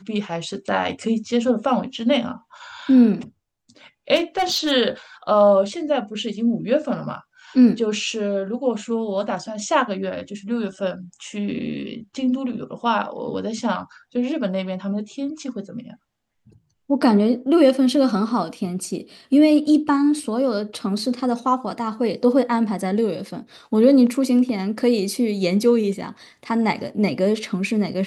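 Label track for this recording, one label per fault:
4.150000	4.720000	clipped -16.5 dBFS

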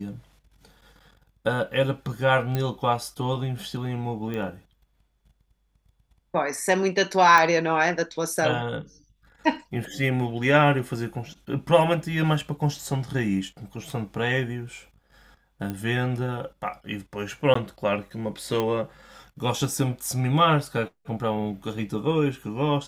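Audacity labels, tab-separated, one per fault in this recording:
2.550000	2.550000	pop -14 dBFS
4.340000	4.340000	pop -20 dBFS
7.380000	7.380000	pop -9 dBFS
15.700000	15.700000	pop -18 dBFS
17.540000	17.550000	dropout 14 ms
18.600000	18.600000	pop -13 dBFS

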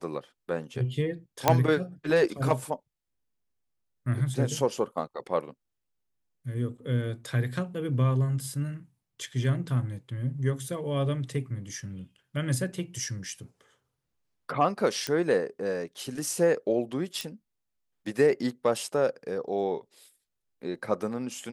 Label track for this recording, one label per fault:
1.480000	1.480000	pop -5 dBFS
15.070000	15.070000	pop -15 dBFS
17.210000	17.210000	pop -18 dBFS

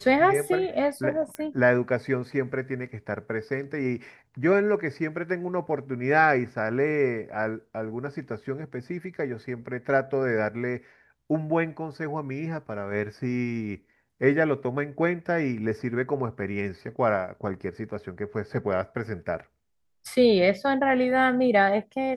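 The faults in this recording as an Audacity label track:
1.350000	1.350000	pop -19 dBFS

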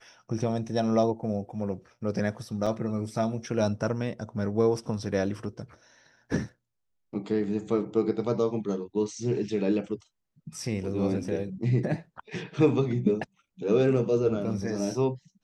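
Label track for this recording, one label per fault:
2.660000	2.660000	dropout 4.7 ms

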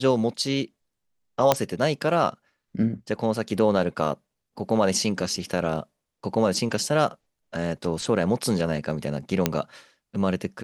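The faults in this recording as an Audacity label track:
1.520000	1.520000	pop -3 dBFS
9.460000	9.460000	pop -5 dBFS

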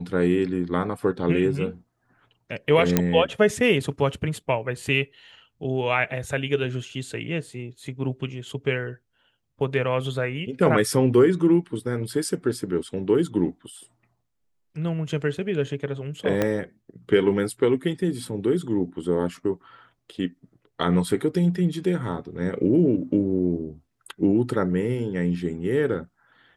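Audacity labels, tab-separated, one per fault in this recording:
2.970000	2.970000	pop -4 dBFS
16.420000	16.420000	pop -9 dBFS

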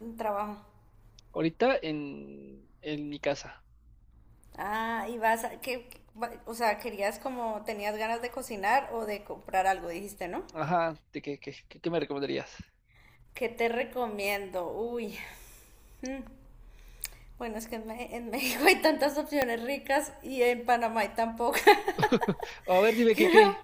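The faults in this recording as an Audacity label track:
19.420000	19.420000	pop -11 dBFS

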